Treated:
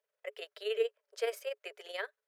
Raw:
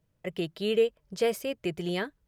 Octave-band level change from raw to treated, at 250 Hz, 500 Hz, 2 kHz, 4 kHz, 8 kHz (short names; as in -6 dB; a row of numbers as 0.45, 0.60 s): under -25 dB, -7.5 dB, -4.0 dB, -6.5 dB, -8.0 dB